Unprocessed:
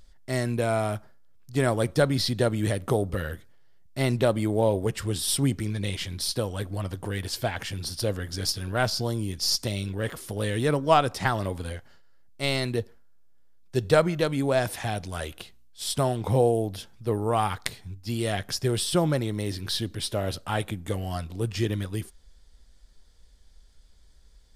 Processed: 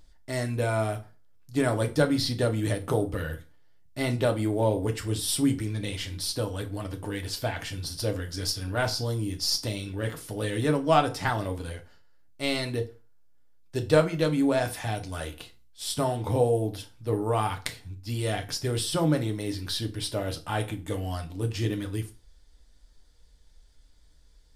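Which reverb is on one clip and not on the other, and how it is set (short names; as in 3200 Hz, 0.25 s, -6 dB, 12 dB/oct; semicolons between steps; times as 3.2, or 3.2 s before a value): FDN reverb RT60 0.31 s, low-frequency decay 1.1×, high-frequency decay 0.9×, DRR 4 dB; gain -3 dB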